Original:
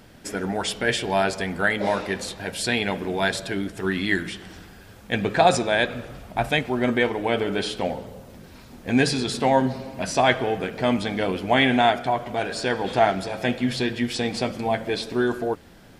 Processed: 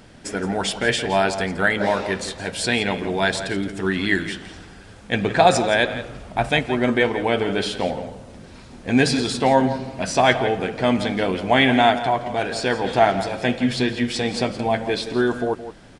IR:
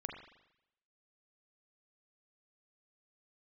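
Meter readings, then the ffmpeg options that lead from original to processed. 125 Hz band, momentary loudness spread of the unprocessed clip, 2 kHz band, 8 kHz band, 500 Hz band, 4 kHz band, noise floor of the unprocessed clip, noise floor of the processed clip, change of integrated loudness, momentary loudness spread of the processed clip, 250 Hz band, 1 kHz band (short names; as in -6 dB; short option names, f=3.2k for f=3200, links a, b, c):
+2.5 dB, 10 LU, +2.5 dB, +2.5 dB, +3.0 dB, +2.5 dB, -47 dBFS, -43 dBFS, +2.5 dB, 9 LU, +3.0 dB, +3.0 dB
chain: -filter_complex "[0:a]aresample=22050,aresample=44100,asplit=2[a][b];[b]adelay=169.1,volume=-12dB,highshelf=f=4k:g=-3.8[c];[a][c]amix=inputs=2:normalize=0,volume=2.5dB"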